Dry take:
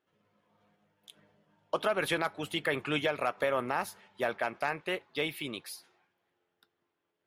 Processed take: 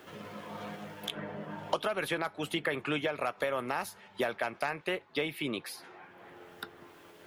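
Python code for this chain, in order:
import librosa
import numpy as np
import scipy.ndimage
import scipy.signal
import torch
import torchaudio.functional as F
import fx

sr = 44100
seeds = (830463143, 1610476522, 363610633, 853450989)

y = fx.band_squash(x, sr, depth_pct=100)
y = y * librosa.db_to_amplitude(-1.5)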